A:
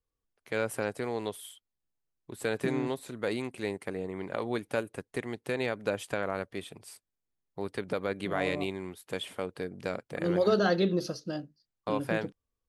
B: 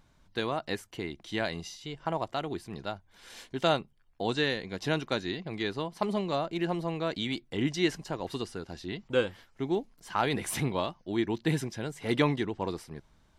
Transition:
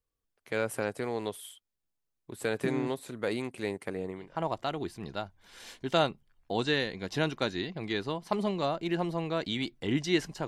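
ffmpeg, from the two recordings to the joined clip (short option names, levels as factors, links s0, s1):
-filter_complex "[0:a]apad=whole_dur=10.47,atrim=end=10.47,atrim=end=4.42,asetpts=PTS-STARTPTS[s0];[1:a]atrim=start=1.8:end=8.17,asetpts=PTS-STARTPTS[s1];[s0][s1]acrossfade=d=0.32:c1=qua:c2=qua"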